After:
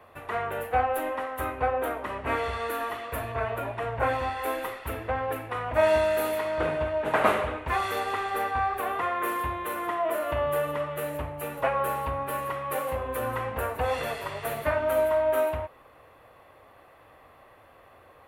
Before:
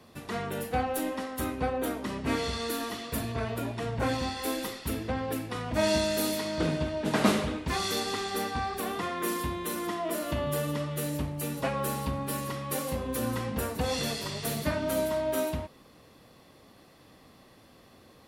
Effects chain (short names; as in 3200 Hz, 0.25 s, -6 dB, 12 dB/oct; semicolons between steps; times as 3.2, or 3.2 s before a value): EQ curve 100 Hz 0 dB, 200 Hz -13 dB, 590 Hz +6 dB, 1300 Hz +7 dB, 2600 Hz +2 dB, 5100 Hz -17 dB, 13000 Hz -2 dB